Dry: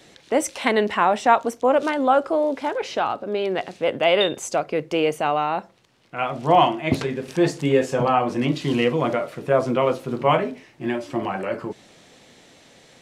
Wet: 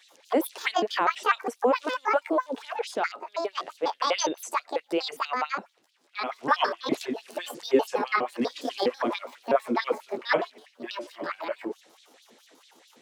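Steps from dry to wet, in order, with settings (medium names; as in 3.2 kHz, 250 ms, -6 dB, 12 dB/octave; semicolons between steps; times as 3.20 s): pitch shift switched off and on +9 st, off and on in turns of 82 ms; LFO high-pass sine 4.6 Hz 250–4000 Hz; trim -7.5 dB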